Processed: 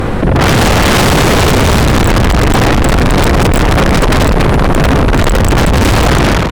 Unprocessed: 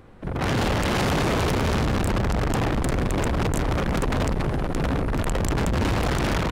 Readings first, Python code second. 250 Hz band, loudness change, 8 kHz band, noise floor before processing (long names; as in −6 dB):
+14.0 dB, +14.5 dB, +16.5 dB, −27 dBFS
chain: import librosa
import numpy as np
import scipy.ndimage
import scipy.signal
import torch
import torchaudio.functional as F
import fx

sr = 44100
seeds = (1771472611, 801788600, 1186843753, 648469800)

y = fx.fade_out_tail(x, sr, length_s=0.53)
y = fx.fold_sine(y, sr, drive_db=10, ceiling_db=-13.5)
y = fx.env_flatten(y, sr, amount_pct=70)
y = y * librosa.db_to_amplitude(7.0)